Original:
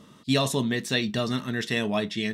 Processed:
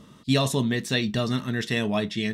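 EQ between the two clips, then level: low shelf 100 Hz +10 dB; 0.0 dB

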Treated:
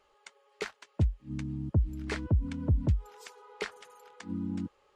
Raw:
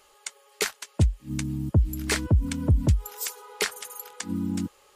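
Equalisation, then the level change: tape spacing loss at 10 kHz 21 dB; -5.5 dB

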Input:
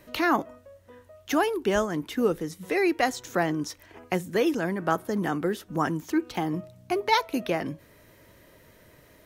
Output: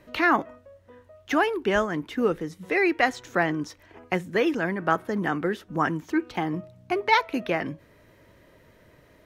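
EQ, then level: LPF 3200 Hz 6 dB/oct; dynamic EQ 2000 Hz, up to +7 dB, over -42 dBFS, Q 0.87; 0.0 dB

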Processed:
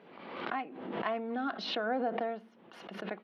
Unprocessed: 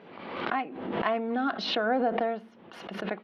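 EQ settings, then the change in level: HPF 130 Hz; -6.0 dB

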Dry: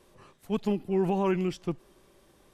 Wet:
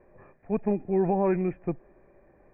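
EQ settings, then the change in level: rippled Chebyshev low-pass 2500 Hz, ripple 9 dB; tilt -1.5 dB/oct; +5.5 dB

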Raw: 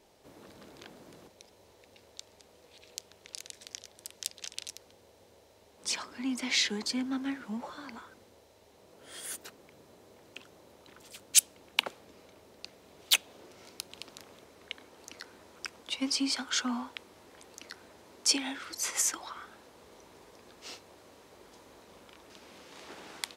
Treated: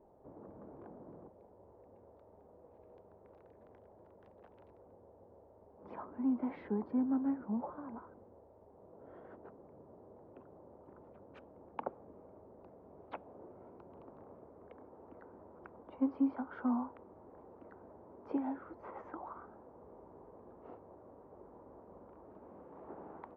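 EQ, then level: LPF 1000 Hz 24 dB/oct; +1.0 dB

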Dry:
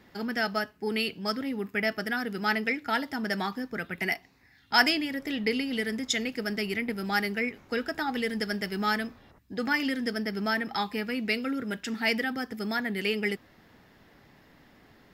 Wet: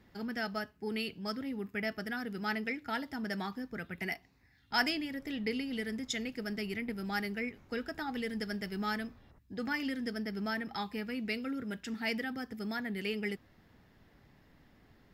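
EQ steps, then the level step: low shelf 150 Hz +10.5 dB; -8.5 dB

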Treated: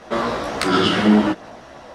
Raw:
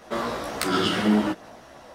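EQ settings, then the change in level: air absorption 54 m; +6.5 dB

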